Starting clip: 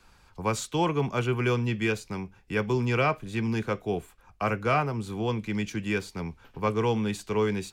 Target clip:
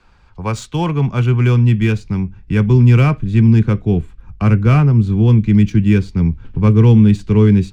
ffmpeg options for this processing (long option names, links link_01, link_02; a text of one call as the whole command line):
ffmpeg -i in.wav -af "adynamicsmooth=sensitivity=7:basefreq=4600,asubboost=boost=10.5:cutoff=210,volume=5.5dB" out.wav